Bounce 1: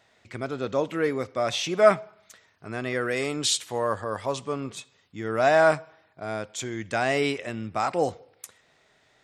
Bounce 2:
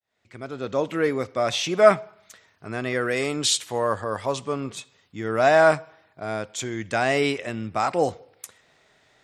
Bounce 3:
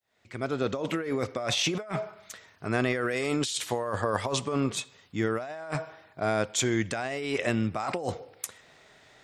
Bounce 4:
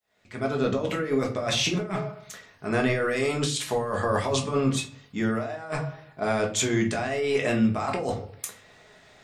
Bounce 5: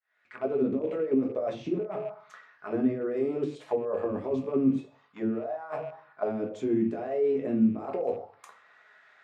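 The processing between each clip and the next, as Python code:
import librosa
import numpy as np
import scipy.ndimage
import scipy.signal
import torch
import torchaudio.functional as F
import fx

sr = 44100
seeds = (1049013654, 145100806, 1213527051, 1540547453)

y1 = fx.fade_in_head(x, sr, length_s=0.92)
y1 = y1 * 10.0 ** (2.5 / 20.0)
y2 = fx.over_compress(y1, sr, threshold_db=-29.0, ratio=-1.0)
y2 = y2 * 10.0 ** (-1.0 / 20.0)
y3 = fx.room_shoebox(y2, sr, seeds[0], volume_m3=180.0, walls='furnished', distance_m=1.4)
y4 = fx.rattle_buzz(y3, sr, strikes_db=-33.0, level_db=-28.0)
y4 = fx.auto_wah(y4, sr, base_hz=270.0, top_hz=1600.0, q=2.8, full_db=-20.5, direction='down')
y4 = y4 * 10.0 ** (3.0 / 20.0)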